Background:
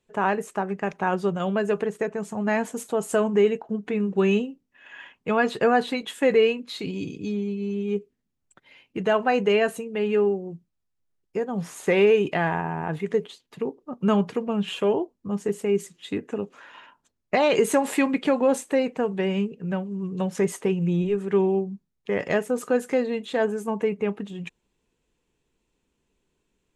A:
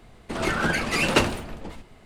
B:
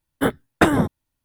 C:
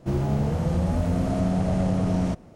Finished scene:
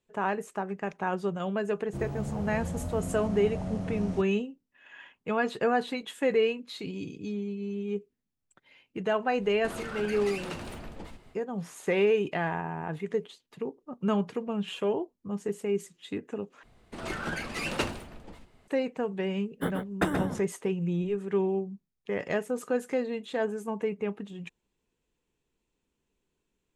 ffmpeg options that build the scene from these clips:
-filter_complex "[1:a]asplit=2[a][b];[0:a]volume=-6dB[c];[a]acompressor=threshold=-30dB:ratio=6:attack=3.2:release=140:knee=1:detection=peak[d];[2:a]asplit=2[e][f];[f]adelay=128.3,volume=-6dB,highshelf=f=4k:g=-2.89[g];[e][g]amix=inputs=2:normalize=0[h];[c]asplit=2[i][j];[i]atrim=end=16.634[k];[b]atrim=end=2.05,asetpts=PTS-STARTPTS,volume=-10dB[l];[j]atrim=start=18.676[m];[3:a]atrim=end=2.55,asetpts=PTS-STARTPTS,volume=-11dB,afade=t=in:d=0.004:c=hsin,afade=t=out:st=2.546:d=0.004:c=hsin,adelay=1870[n];[d]atrim=end=2.05,asetpts=PTS-STARTPTS,volume=-5dB,afade=t=in:d=0.1,afade=t=out:st=1.95:d=0.1,adelay=9350[o];[h]atrim=end=1.24,asetpts=PTS-STARTPTS,volume=-12dB,afade=t=in:d=0.004:c=hsin,afade=t=out:st=1.236:d=0.004:c=hsin,adelay=855540S[p];[k][l]acrossfade=d=0.004:c1=hsin:c2=hsin[q];[q][m]acrossfade=d=0.004:c1=hsin:c2=hsin[r];[r][n][o][p]amix=inputs=4:normalize=0"

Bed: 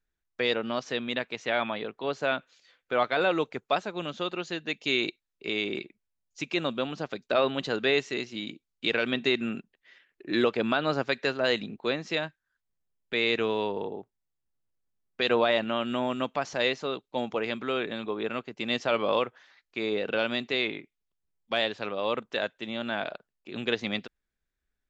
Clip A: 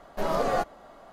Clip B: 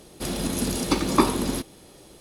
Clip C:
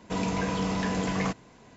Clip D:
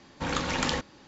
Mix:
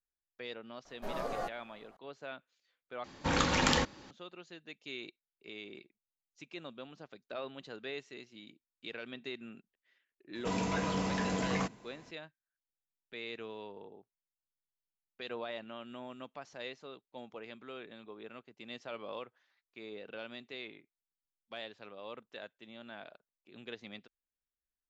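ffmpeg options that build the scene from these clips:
-filter_complex "[0:a]volume=-17dB[a];[4:a]acontrast=62[b];[3:a]lowshelf=f=160:g=-4[c];[a]asplit=2[d][e];[d]atrim=end=3.044[f];[b]atrim=end=1.07,asetpts=PTS-STARTPTS,volume=-6dB[g];[e]atrim=start=4.106[h];[1:a]atrim=end=1.12,asetpts=PTS-STARTPTS,volume=-11.5dB,afade=t=in:d=0.004:c=hsin,afade=t=out:st=1.116:d=0.004:c=hsin,adelay=850[i];[c]atrim=end=1.76,asetpts=PTS-STARTPTS,volume=-4dB,afade=t=in:d=0.004:c=hsin,afade=t=out:st=1.756:d=0.004:c=hsin,adelay=10350[j];[f][g]acrossfade=d=0.004:c1=hsin:c2=hsin[k];[k][h]acrossfade=d=0.004:c1=hsin:c2=hsin[l];[l][i][j]amix=inputs=3:normalize=0"

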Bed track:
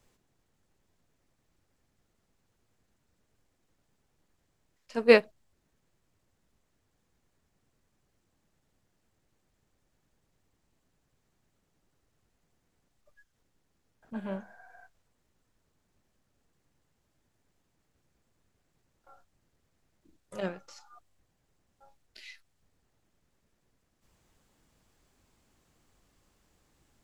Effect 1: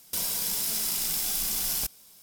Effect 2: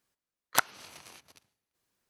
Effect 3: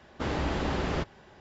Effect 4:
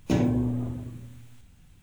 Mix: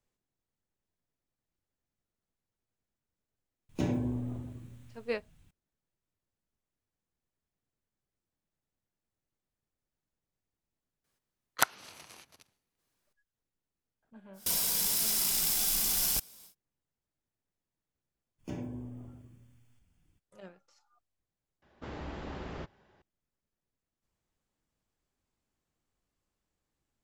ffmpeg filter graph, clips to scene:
-filter_complex "[4:a]asplit=2[a][b];[0:a]volume=-16dB[c];[b]asuperstop=centerf=3900:order=8:qfactor=7.5[d];[3:a]highshelf=f=4.2k:g=-5.5[e];[c]asplit=2[f][g];[f]atrim=end=21.624[h];[e]atrim=end=1.4,asetpts=PTS-STARTPTS,volume=-11.5dB[i];[g]atrim=start=23.016[j];[a]atrim=end=1.82,asetpts=PTS-STARTPTS,volume=-7.5dB,afade=t=in:d=0.004:c=hsin,afade=t=out:st=1.816:d=0.004:c=hsin,adelay=162729S[k];[2:a]atrim=end=2.09,asetpts=PTS-STARTPTS,volume=-1.5dB,afade=t=in:d=0.004:c=hsin,afade=t=out:st=2.086:d=0.004:c=hsin,adelay=11040[l];[1:a]atrim=end=2.22,asetpts=PTS-STARTPTS,volume=-0.5dB,afade=t=in:d=0.1,afade=t=out:st=2.12:d=0.1,adelay=14330[m];[d]atrim=end=1.82,asetpts=PTS-STARTPTS,volume=-16dB,afade=t=in:d=0.02,afade=t=out:st=1.8:d=0.02,adelay=18380[n];[h][i]acrossfade=d=0.004:c1=hsin:c2=hsin[o];[o][j]acrossfade=d=0.004:c1=hsin:c2=hsin[p];[p][k][l][m][n]amix=inputs=5:normalize=0"

